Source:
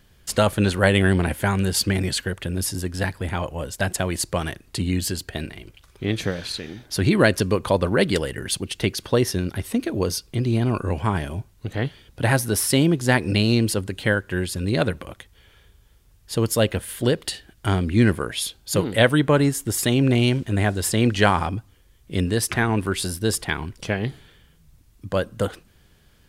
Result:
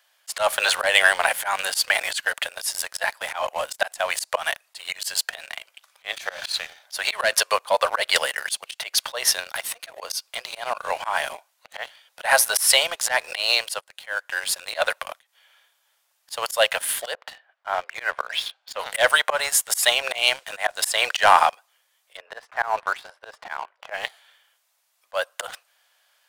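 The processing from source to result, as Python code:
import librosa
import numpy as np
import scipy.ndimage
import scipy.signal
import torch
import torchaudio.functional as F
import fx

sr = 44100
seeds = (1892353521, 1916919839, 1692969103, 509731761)

y = fx.lowpass(x, sr, hz=fx.line((17.13, 1300.0), (18.78, 3100.0)), slope=12, at=(17.13, 18.78), fade=0.02)
y = fx.lowpass(y, sr, hz=1400.0, slope=12, at=(22.17, 23.94))
y = fx.edit(y, sr, fx.fade_in_from(start_s=13.81, length_s=0.98, floor_db=-16.0), tone=tone)
y = scipy.signal.sosfilt(scipy.signal.butter(8, 600.0, 'highpass', fs=sr, output='sos'), y)
y = fx.leveller(y, sr, passes=2)
y = fx.auto_swell(y, sr, attack_ms=154.0)
y = y * 10.0 ** (2.5 / 20.0)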